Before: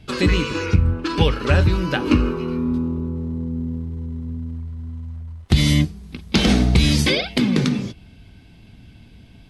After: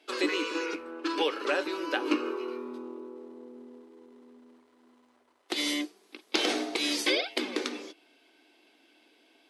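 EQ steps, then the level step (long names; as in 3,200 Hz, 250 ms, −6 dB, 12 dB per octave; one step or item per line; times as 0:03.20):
elliptic high-pass filter 310 Hz, stop band 50 dB
−6.0 dB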